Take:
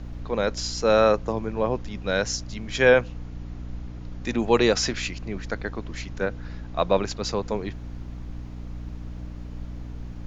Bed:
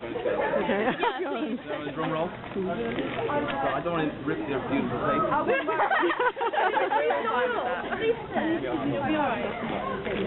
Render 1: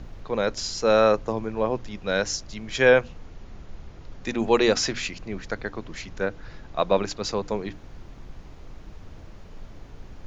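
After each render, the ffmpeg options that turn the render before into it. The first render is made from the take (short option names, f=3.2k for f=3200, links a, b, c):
-af "bandreject=f=60:t=h:w=6,bandreject=f=120:t=h:w=6,bandreject=f=180:t=h:w=6,bandreject=f=240:t=h:w=6,bandreject=f=300:t=h:w=6"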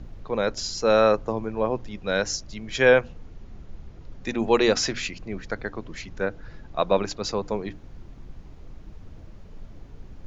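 -af "afftdn=nr=6:nf=-45"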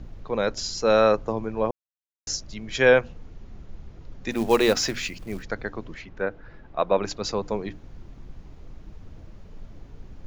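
-filter_complex "[0:a]asplit=3[a][b][c];[a]afade=t=out:st=4.3:d=0.02[d];[b]acrusher=bits=5:mode=log:mix=0:aa=0.000001,afade=t=in:st=4.3:d=0.02,afade=t=out:st=5.42:d=0.02[e];[c]afade=t=in:st=5.42:d=0.02[f];[d][e][f]amix=inputs=3:normalize=0,asettb=1/sr,asplit=3[g][h][i];[g]atrim=end=5.944[j];[h]atrim=start=5.94:end=7.03,asetpts=PTS-STARTPTS,afade=t=in:d=0.004:c=qsin,afade=t=out:st=1.086:d=0.004:c=qsin,bass=f=250:g=-5,treble=f=4k:g=-15[k];[i]atrim=start=7.026[l];[j][k]acrossfade=d=0.004:c1=hsin:c2=qsin[m];[m][l]acrossfade=d=0.004:c1=qsin:c2=hsin,asplit=3[n][o][p];[n]atrim=end=1.71,asetpts=PTS-STARTPTS,afade=t=out:st=1.706:d=0.004:c=hsin[q];[o]atrim=start=1.71:end=2.27,asetpts=PTS-STARTPTS,volume=0[r];[p]atrim=start=2.27,asetpts=PTS-STARTPTS,afade=t=in:d=0.004:c=hsin[s];[q][r][s]concat=n=3:v=0:a=1"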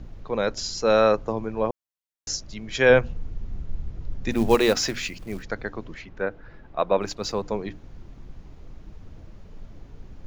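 -filter_complex "[0:a]asettb=1/sr,asplit=3[a][b][c];[a]atrim=end=2.904[d];[b]atrim=start=2.9:end=4.55,asetpts=PTS-STARTPTS,afade=t=in:d=0.004:c=qsin,afade=t=out:st=1.646:d=0.004:c=qsin,lowshelf=f=160:g=11[e];[c]atrim=start=4.546[f];[d][e]acrossfade=d=0.004:c1=hsin:c2=qsin[g];[g][f]acrossfade=d=0.004:c1=qsin:c2=hsin,asettb=1/sr,asplit=3[h][i][j];[h]atrim=end=7.014[k];[i]atrim=start=7.01:end=7.43,asetpts=PTS-STARTPTS,afade=t=in:d=0.004:c=qsin,afade=t=out:st=0.416:d=0.004:c=qsin,aeval=exprs='sgn(val(0))*max(abs(val(0))-0.00178,0)':c=same[l];[j]atrim=start=7.426[m];[k][l]acrossfade=d=0.004:c1=hsin:c2=qsin[n];[n][m]acrossfade=d=0.004:c1=qsin:c2=hsin"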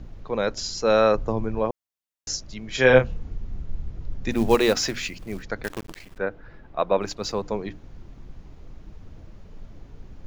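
-filter_complex "[0:a]asettb=1/sr,asplit=3[a][b][c];[a]atrim=end=1.154[d];[b]atrim=start=1.15:end=1.59,asetpts=PTS-STARTPTS,afade=t=in:d=0.004:c=qsin,afade=t=out:st=0.436:d=0.004:c=qsin,lowshelf=f=130:g=10.5[e];[c]atrim=start=1.586[f];[d][e]acrossfade=d=0.004:c1=hsin:c2=qsin[g];[g][f]acrossfade=d=0.004:c1=qsin:c2=hsin,asettb=1/sr,asplit=3[h][i][j];[h]atrim=end=2.724[k];[i]atrim=start=2.72:end=3.36,asetpts=PTS-STARTPTS,afade=t=in:d=0.004:c=qsin,afade=t=out:st=0.636:d=0.004:c=qsin,asplit=2[l][m];[m]adelay=31,volume=-5dB[n];[l][n]amix=inputs=2:normalize=0,atrim=end_sample=28224[o];[j]atrim=start=3.356[p];[k][o]acrossfade=d=0.004:c1=hsin:c2=qsin[q];[q][p]acrossfade=d=0.004:c1=qsin:c2=hsin,asettb=1/sr,asplit=3[r][s][t];[r]atrim=end=5.644[u];[s]atrim=start=5.64:end=6.18,asetpts=PTS-STARTPTS,afade=t=in:d=0.004:c=qsin,afade=t=out:st=0.536:d=0.004:c=qsin,acrusher=bits=6:dc=4:mix=0:aa=0.000001[v];[t]atrim=start=6.176[w];[u][v]acrossfade=d=0.004:c1=hsin:c2=qsin[x];[x][w]acrossfade=d=0.004:c1=qsin:c2=hsin"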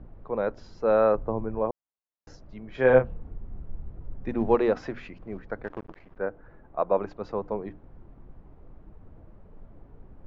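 -af "lowpass=1.1k,lowshelf=f=340:g=-6.5"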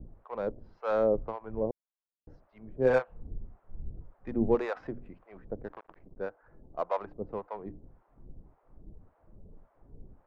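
-filter_complex "[0:a]adynamicsmooth=sensitivity=2.5:basefreq=1.9k,acrossover=split=640[a][b];[a]aeval=exprs='val(0)*(1-1/2+1/2*cos(2*PI*1.8*n/s))':c=same[c];[b]aeval=exprs='val(0)*(1-1/2-1/2*cos(2*PI*1.8*n/s))':c=same[d];[c][d]amix=inputs=2:normalize=0"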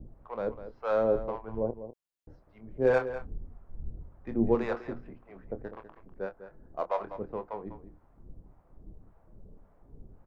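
-filter_complex "[0:a]asplit=2[a][b];[b]adelay=26,volume=-10dB[c];[a][c]amix=inputs=2:normalize=0,asplit=2[d][e];[e]adelay=198.3,volume=-12dB,highshelf=f=4k:g=-4.46[f];[d][f]amix=inputs=2:normalize=0"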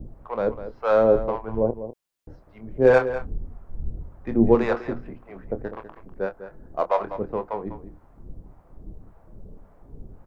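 -af "volume=8.5dB"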